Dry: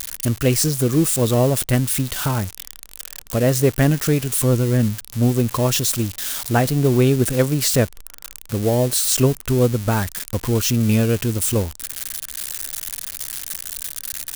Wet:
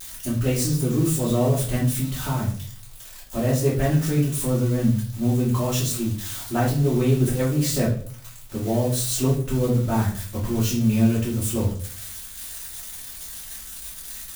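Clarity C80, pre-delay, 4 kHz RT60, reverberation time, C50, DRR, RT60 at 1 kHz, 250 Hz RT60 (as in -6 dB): 11.0 dB, 3 ms, 0.35 s, 0.50 s, 6.0 dB, -9.0 dB, 0.40 s, 0.65 s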